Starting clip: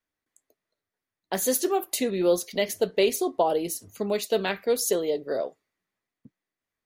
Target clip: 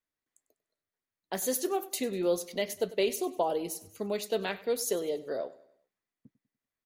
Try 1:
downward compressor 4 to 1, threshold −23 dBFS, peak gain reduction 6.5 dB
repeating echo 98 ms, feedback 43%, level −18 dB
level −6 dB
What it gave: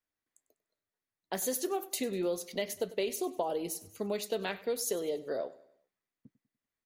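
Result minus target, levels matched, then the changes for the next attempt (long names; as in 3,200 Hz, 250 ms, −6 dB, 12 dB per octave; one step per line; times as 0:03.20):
downward compressor: peak gain reduction +6.5 dB
remove: downward compressor 4 to 1, threshold −23 dBFS, peak gain reduction 6.5 dB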